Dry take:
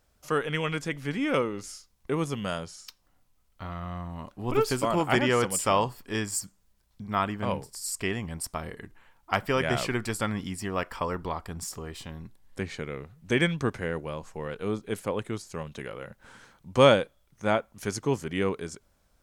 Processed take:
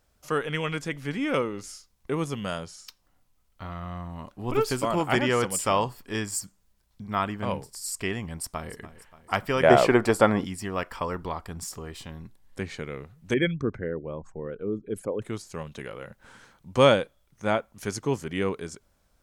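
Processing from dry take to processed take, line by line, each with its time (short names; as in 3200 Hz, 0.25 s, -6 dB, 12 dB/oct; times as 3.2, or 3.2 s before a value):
8.3–8.73 echo throw 0.29 s, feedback 55%, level -15 dB
9.63–10.45 bell 590 Hz +15 dB 2.6 oct
13.34–15.22 formant sharpening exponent 2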